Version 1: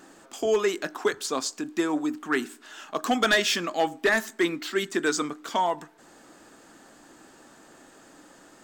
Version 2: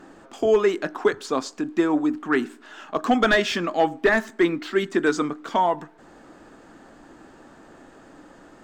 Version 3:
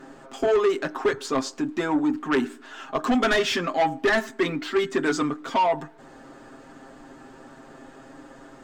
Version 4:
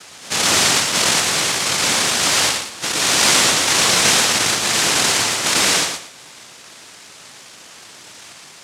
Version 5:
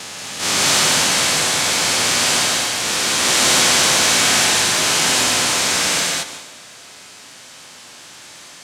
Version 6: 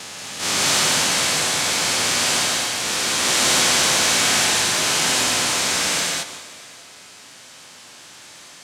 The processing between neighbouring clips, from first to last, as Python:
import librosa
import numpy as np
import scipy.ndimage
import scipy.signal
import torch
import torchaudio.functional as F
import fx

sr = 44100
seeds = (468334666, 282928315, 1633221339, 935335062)

y1 = fx.lowpass(x, sr, hz=1700.0, slope=6)
y1 = fx.low_shelf(y1, sr, hz=83.0, db=9.0)
y1 = F.gain(torch.from_numpy(y1), 5.0).numpy()
y2 = y1 + 0.76 * np.pad(y1, (int(7.5 * sr / 1000.0), 0))[:len(y1)]
y2 = 10.0 ** (-16.0 / 20.0) * np.tanh(y2 / 10.0 ** (-16.0 / 20.0))
y3 = fx.spec_dilate(y2, sr, span_ms=240)
y3 = fx.noise_vocoder(y3, sr, seeds[0], bands=1)
y3 = fx.echo_feedback(y3, sr, ms=115, feedback_pct=20, wet_db=-7)
y3 = F.gain(torch.from_numpy(y3), -1.0).numpy()
y4 = fx.spec_steps(y3, sr, hold_ms=400)
y4 = fx.rev_gated(y4, sr, seeds[1], gate_ms=240, shape='rising', drr_db=-0.5)
y4 = fx.transient(y4, sr, attack_db=-8, sustain_db=7)
y4 = F.gain(torch.from_numpy(y4), -1.0).numpy()
y5 = y4 + 10.0 ** (-23.0 / 20.0) * np.pad(y4, (int(596 * sr / 1000.0), 0))[:len(y4)]
y5 = F.gain(torch.from_numpy(y5), -3.0).numpy()